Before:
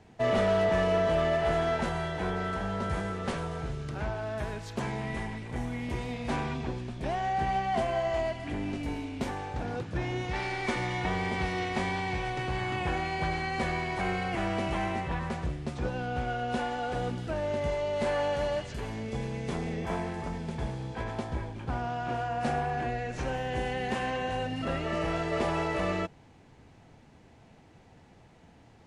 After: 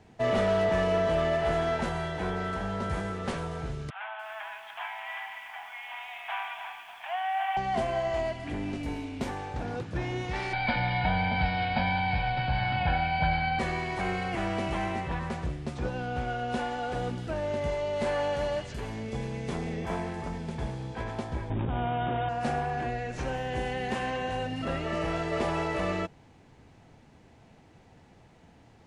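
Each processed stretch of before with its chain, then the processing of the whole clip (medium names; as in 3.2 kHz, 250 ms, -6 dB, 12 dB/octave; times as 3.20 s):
3.90–7.57 s: Chebyshev band-pass 700–3300 Hz, order 5 + treble shelf 2.4 kHz +8.5 dB + bit-crushed delay 290 ms, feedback 35%, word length 9-bit, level -8.5 dB
10.53–13.59 s: brick-wall FIR low-pass 5.2 kHz + comb 1.3 ms, depth 97%
21.50–22.29 s: median filter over 25 samples + brick-wall FIR low-pass 3.8 kHz + level flattener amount 100%
whole clip: none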